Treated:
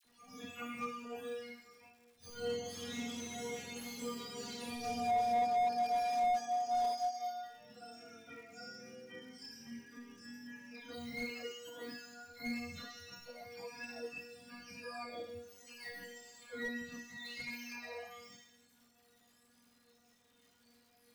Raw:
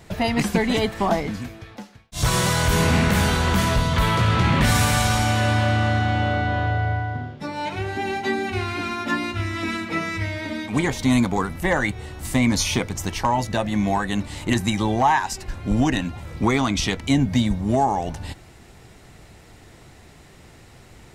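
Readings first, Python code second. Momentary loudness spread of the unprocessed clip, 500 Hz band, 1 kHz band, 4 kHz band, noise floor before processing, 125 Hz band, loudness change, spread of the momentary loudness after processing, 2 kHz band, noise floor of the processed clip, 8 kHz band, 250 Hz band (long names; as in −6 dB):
10 LU, −15.0 dB, −13.0 dB, −20.0 dB, −48 dBFS, −38.0 dB, −18.0 dB, 19 LU, −21.0 dB, −70 dBFS, −21.0 dB, −24.5 dB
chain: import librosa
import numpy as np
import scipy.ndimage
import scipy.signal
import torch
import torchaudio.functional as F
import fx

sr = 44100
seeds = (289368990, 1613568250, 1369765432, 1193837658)

y = fx.octave_mirror(x, sr, pivot_hz=730.0)
y = fx.peak_eq(y, sr, hz=470.0, db=10.5, octaves=0.2)
y = fx.hum_notches(y, sr, base_hz=60, count=9)
y = fx.auto_swell(y, sr, attack_ms=138.0)
y = fx.comb_fb(y, sr, f0_hz=240.0, decay_s=0.96, harmonics='all', damping=0.0, mix_pct=100)
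y = fx.chorus_voices(y, sr, voices=4, hz=0.35, base_ms=13, depth_ms=3.2, mix_pct=50)
y = fx.dmg_crackle(y, sr, seeds[0], per_s=340.0, level_db=-60.0)
y = fx.dispersion(y, sr, late='lows', ms=44.0, hz=1300.0)
y = fx.slew_limit(y, sr, full_power_hz=18.0)
y = y * 10.0 ** (3.0 / 20.0)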